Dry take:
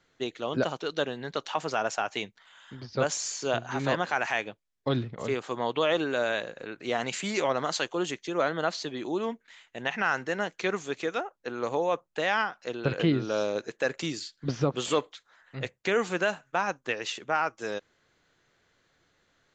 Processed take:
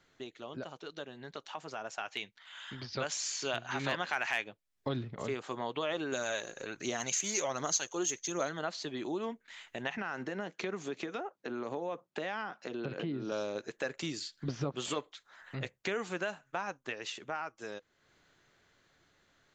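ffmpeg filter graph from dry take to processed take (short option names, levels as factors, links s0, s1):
-filter_complex "[0:a]asettb=1/sr,asplit=3[s0][s1][s2];[s0]atrim=end=1.984[s3];[s1]atrim=start=1.98:end=4.44,asetpts=PTS-STARTPTS,afade=t=in:d=0.004:c=qsin,afade=t=out:st=2.456:d=0.004:c=qsin,equalizer=f=2900:w=0.5:g=9,asoftclip=type=hard:threshold=0.316[s4];[s2]atrim=start=4.436[s5];[s3][s4]acrossfade=d=0.004:c1=hsin:c2=qsin[s6];[s6][s5]acrossfade=d=0.004:c1=qsin:c2=hsin,asettb=1/sr,asplit=3[s7][s8][s9];[s7]atrim=end=6.124[s10];[s8]atrim=start=6.12:end=8.59,asetpts=PTS-STARTPTS,afade=t=in:d=0.004:c=qsin,afade=t=out:st=2.466:d=0.004:c=qsin,lowpass=f=6400:t=q:w=12,aphaser=in_gain=1:out_gain=1:delay=3:decay=0.35:speed=1.3:type=triangular[s11];[s9]atrim=start=8.586[s12];[s10][s11]acrossfade=d=0.004:c1=hsin:c2=qsin[s13];[s13][s12]acrossfade=d=0.004:c1=qsin:c2=hsin,asettb=1/sr,asplit=3[s14][s15][s16];[s14]atrim=end=9.974[s17];[s15]atrim=start=9.97:end=13.32,asetpts=PTS-STARTPTS,afade=t=in:d=0.004:c=qsin,afade=t=out:st=3.346:d=0.004:c=qsin,lowshelf=f=360:g=11.5,acompressor=threshold=0.0398:ratio=3:attack=3.2:release=140:knee=1:detection=peak,highpass=200,lowpass=7100[s18];[s16]atrim=start=13.316[s19];[s17][s18]acrossfade=d=0.004:c1=hsin:c2=qsin[s20];[s20][s19]acrossfade=d=0.004:c1=qsin:c2=hsin,acompressor=threshold=0.00282:ratio=2,bandreject=f=490:w=14,dynaudnorm=f=260:g=21:m=2.24"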